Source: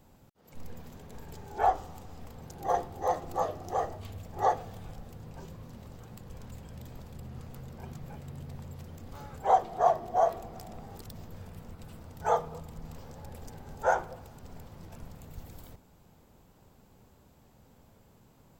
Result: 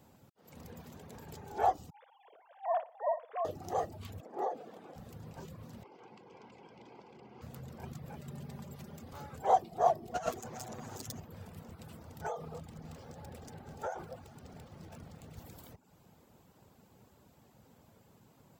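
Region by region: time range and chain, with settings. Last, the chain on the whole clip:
1.9–3.45 sine-wave speech + bell 760 Hz -5 dB 0.21 oct + flutter echo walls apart 10.2 m, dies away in 0.47 s
4.2–4.96 HPF 300 Hz 24 dB/oct + compressor 10:1, threshold -28 dBFS + tilt -3.5 dB/oct
5.83–7.42 Butterworth band-stop 1800 Hz, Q 5.7 + speaker cabinet 320–4700 Hz, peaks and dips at 380 Hz +6 dB, 600 Hz -6 dB, 880 Hz +6 dB, 1300 Hz -6 dB, 2100 Hz +4 dB, 3800 Hz -10 dB
8.19–9.04 HPF 42 Hz + comb 5 ms, depth 59%
10.14–11.2 minimum comb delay 8 ms + bell 6600 Hz +13 dB 0.41 oct + negative-ratio compressor -29 dBFS, ratio -0.5
12.21–15.37 median filter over 3 samples + notch 980 Hz, Q 11 + compressor 12:1, threshold -30 dBFS
whole clip: HPF 88 Hz; dynamic EQ 1400 Hz, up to -6 dB, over -41 dBFS, Q 0.74; reverb removal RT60 0.52 s

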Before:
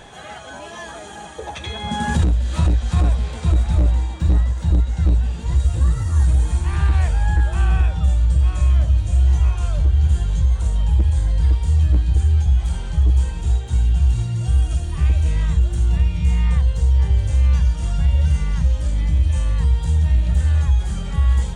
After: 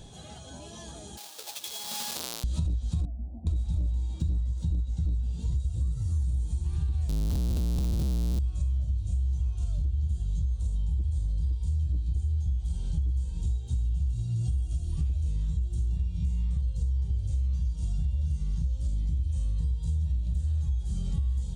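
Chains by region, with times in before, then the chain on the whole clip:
1.17–2.44 half-waves squared off + HPF 970 Hz
3.05–3.47 rippled Chebyshev low-pass 1000 Hz, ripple 9 dB + fixed phaser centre 670 Hz, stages 8
7.09–8.39 Schmitt trigger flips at -30 dBFS + mismatched tape noise reduction encoder only
whole clip: EQ curve 150 Hz 0 dB, 1900 Hz -22 dB, 3900 Hz -4 dB; compressor, threshold -26 dBFS

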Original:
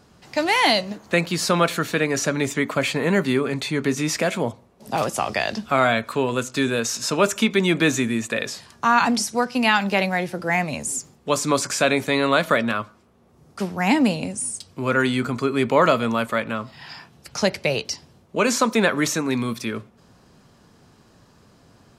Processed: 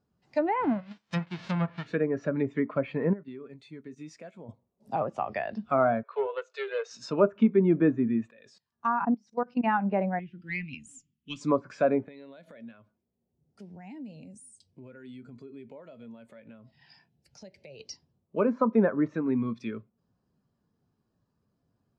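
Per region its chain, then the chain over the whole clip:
0.59–1.85 spectral whitening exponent 0.1 + LPF 4700 Hz
3.13–4.49 block floating point 7-bit + gate -25 dBFS, range -10 dB + compressor 5:1, threshold -30 dBFS
6.03–6.91 Chebyshev high-pass 400 Hz, order 8 + air absorption 52 m + Doppler distortion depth 0.16 ms
8.29–9.66 LPF 9800 Hz + level quantiser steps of 20 dB
10.19–11.41 EQ curve 300 Hz 0 dB, 630 Hz -28 dB, 990 Hz -16 dB, 3000 Hz +10 dB, 4300 Hz -3 dB + tube stage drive 13 dB, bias 0.65
12.08–17.8 compressor 5:1, threshold -32 dBFS + bell 1200 Hz -10.5 dB 0.46 oct
whole clip: treble ducked by the level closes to 1300 Hz, closed at -17 dBFS; spectral expander 1.5:1; gain -3 dB

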